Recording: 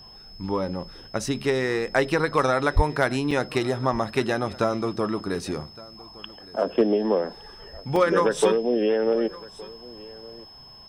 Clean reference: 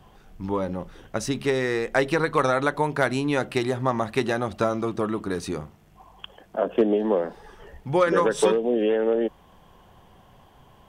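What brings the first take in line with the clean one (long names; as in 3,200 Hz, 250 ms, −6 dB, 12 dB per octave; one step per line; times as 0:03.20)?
notch filter 5,200 Hz, Q 30
0:02.75–0:02.87: high-pass filter 140 Hz 24 dB per octave
repair the gap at 0:03.31/0:07.96, 2.9 ms
echo removal 1,165 ms −21 dB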